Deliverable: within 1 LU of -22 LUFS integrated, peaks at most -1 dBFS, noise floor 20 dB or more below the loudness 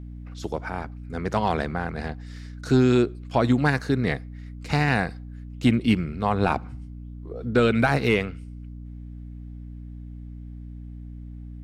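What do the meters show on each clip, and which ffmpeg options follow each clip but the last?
hum 60 Hz; highest harmonic 300 Hz; hum level -35 dBFS; loudness -24.0 LUFS; peak level -8.5 dBFS; loudness target -22.0 LUFS
-> -af "bandreject=f=60:t=h:w=6,bandreject=f=120:t=h:w=6,bandreject=f=180:t=h:w=6,bandreject=f=240:t=h:w=6,bandreject=f=300:t=h:w=6"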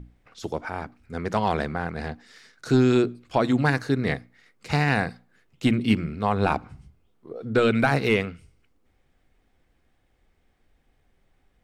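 hum not found; loudness -24.5 LUFS; peak level -7.5 dBFS; loudness target -22.0 LUFS
-> -af "volume=1.33"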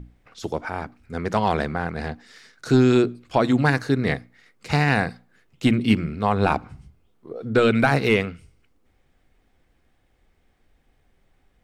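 loudness -22.0 LUFS; peak level -5.0 dBFS; noise floor -64 dBFS

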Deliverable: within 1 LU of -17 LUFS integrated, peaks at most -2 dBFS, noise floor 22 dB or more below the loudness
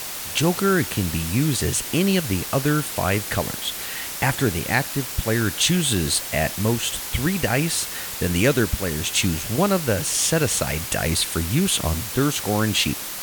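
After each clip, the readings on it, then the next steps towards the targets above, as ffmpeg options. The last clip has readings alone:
noise floor -32 dBFS; noise floor target -44 dBFS; loudness -21.5 LUFS; peak level -5.5 dBFS; loudness target -17.0 LUFS
-> -af "afftdn=nr=12:nf=-32"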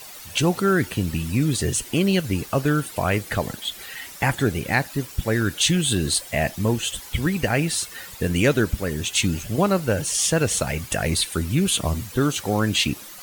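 noise floor -40 dBFS; noise floor target -45 dBFS
-> -af "afftdn=nr=6:nf=-40"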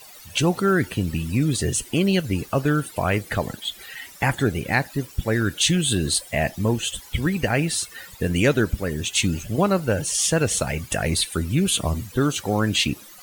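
noise floor -45 dBFS; loudness -23.0 LUFS; peak level -6.5 dBFS; loudness target -17.0 LUFS
-> -af "volume=2,alimiter=limit=0.794:level=0:latency=1"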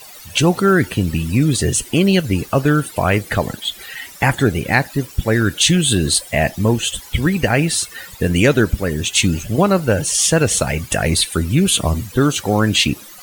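loudness -17.0 LUFS; peak level -2.0 dBFS; noise floor -39 dBFS

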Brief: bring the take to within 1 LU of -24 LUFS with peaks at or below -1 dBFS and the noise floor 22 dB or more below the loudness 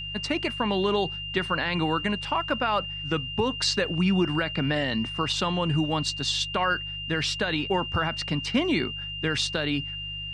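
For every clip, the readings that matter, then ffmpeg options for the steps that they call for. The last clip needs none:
hum 50 Hz; highest harmonic 150 Hz; hum level -40 dBFS; steady tone 2.8 kHz; tone level -33 dBFS; loudness -26.5 LUFS; peak level -12.5 dBFS; loudness target -24.0 LUFS
-> -af "bandreject=f=50:t=h:w=4,bandreject=f=100:t=h:w=4,bandreject=f=150:t=h:w=4"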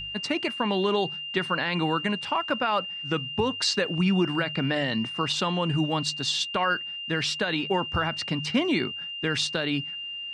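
hum not found; steady tone 2.8 kHz; tone level -33 dBFS
-> -af "bandreject=f=2800:w=30"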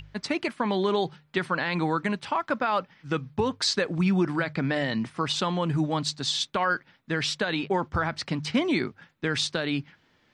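steady tone not found; loudness -27.5 LUFS; peak level -13.5 dBFS; loudness target -24.0 LUFS
-> -af "volume=1.5"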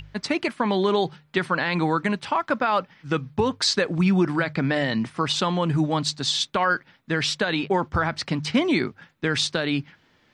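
loudness -24.0 LUFS; peak level -10.0 dBFS; noise floor -62 dBFS

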